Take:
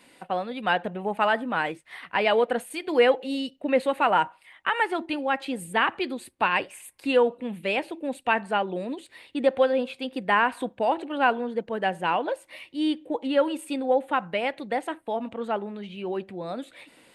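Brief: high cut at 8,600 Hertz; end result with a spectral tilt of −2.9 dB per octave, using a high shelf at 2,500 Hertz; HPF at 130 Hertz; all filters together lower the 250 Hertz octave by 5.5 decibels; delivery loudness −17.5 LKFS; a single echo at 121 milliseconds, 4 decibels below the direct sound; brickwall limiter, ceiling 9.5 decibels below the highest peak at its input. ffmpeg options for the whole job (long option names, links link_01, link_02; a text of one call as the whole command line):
ffmpeg -i in.wav -af "highpass=130,lowpass=8600,equalizer=frequency=250:width_type=o:gain=-6.5,highshelf=frequency=2500:gain=7.5,alimiter=limit=-16dB:level=0:latency=1,aecho=1:1:121:0.631,volume=10.5dB" out.wav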